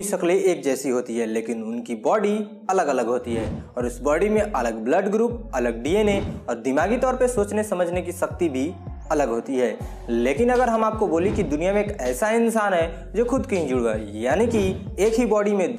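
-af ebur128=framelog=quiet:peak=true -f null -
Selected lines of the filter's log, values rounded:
Integrated loudness:
  I:         -22.6 LUFS
  Threshold: -32.7 LUFS
Loudness range:
  LRA:         2.5 LU
  Threshold: -42.8 LUFS
  LRA low:   -24.0 LUFS
  LRA high:  -21.5 LUFS
True peak:
  Peak:      -10.0 dBFS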